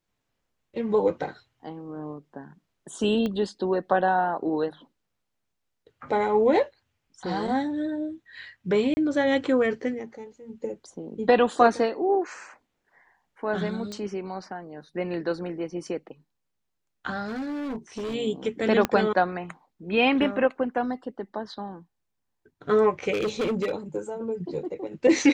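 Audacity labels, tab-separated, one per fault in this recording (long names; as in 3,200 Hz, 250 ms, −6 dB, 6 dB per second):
3.260000	3.260000	click −18 dBFS
8.940000	8.970000	drop-out 30 ms
13.920000	13.920000	click −23 dBFS
17.280000	18.150000	clipping −28.5 dBFS
18.850000	18.850000	click −9 dBFS
23.130000	23.710000	clipping −22.5 dBFS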